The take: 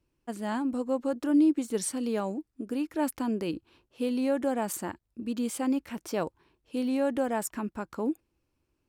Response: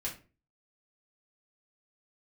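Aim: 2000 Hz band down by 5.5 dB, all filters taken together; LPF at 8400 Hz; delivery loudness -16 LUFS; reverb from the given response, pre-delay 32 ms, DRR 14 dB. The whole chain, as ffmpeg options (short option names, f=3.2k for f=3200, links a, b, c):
-filter_complex "[0:a]lowpass=8.4k,equalizer=f=2k:t=o:g=-7.5,asplit=2[a][b];[1:a]atrim=start_sample=2205,adelay=32[c];[b][c]afir=irnorm=-1:irlink=0,volume=-16dB[d];[a][d]amix=inputs=2:normalize=0,volume=14.5dB"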